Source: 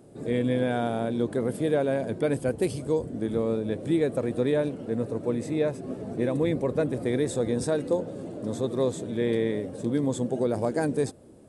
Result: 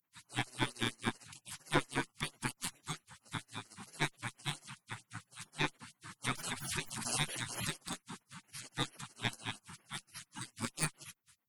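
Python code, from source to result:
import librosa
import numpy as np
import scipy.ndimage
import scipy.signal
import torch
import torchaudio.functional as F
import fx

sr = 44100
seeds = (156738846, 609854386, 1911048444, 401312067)

y = fx.dynamic_eq(x, sr, hz=210.0, q=2.5, threshold_db=-38.0, ratio=4.0, max_db=-3)
y = fx.filter_lfo_highpass(y, sr, shape='sine', hz=4.4, low_hz=550.0, high_hz=5600.0, q=4.5)
y = fx.spec_gate(y, sr, threshold_db=-30, keep='weak')
y = fx.tube_stage(y, sr, drive_db=31.0, bias=0.8)
y = fx.low_shelf(y, sr, hz=280.0, db=10.5)
y = fx.pre_swell(y, sr, db_per_s=49.0, at=(6.24, 7.66), fade=0.02)
y = y * 10.0 ** (14.5 / 20.0)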